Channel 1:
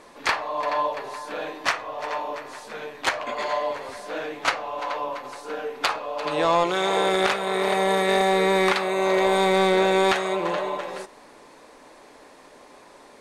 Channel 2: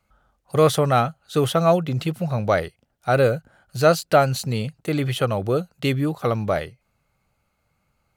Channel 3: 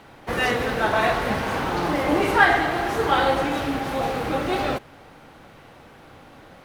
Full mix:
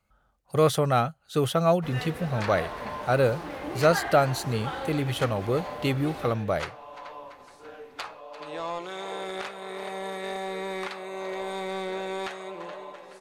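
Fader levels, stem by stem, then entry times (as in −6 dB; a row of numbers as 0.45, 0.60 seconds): −13.0, −4.5, −14.5 decibels; 2.15, 0.00, 1.55 seconds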